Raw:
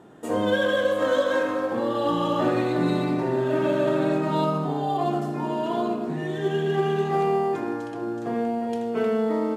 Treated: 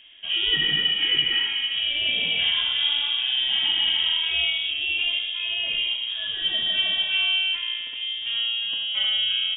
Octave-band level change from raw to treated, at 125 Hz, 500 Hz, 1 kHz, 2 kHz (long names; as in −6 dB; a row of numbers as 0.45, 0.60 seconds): below −15 dB, −25.5 dB, −18.5 dB, +6.5 dB